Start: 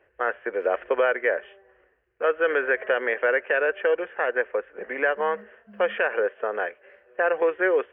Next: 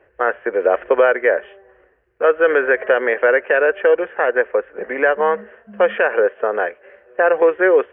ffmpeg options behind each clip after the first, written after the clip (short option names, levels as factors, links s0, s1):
-af "highshelf=f=2500:g=-10,volume=2.82"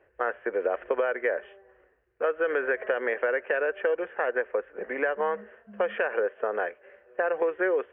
-af "acompressor=threshold=0.2:ratio=6,volume=0.398"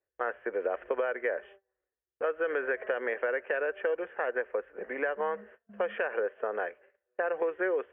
-af "agate=range=0.0708:threshold=0.00398:ratio=16:detection=peak,volume=0.631"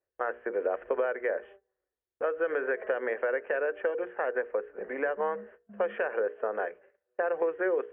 -af "highshelf=f=2600:g=-12,bandreject=f=60:t=h:w=6,bandreject=f=120:t=h:w=6,bandreject=f=180:t=h:w=6,bandreject=f=240:t=h:w=6,bandreject=f=300:t=h:w=6,bandreject=f=360:t=h:w=6,bandreject=f=420:t=h:w=6,bandreject=f=480:t=h:w=6,volume=1.33"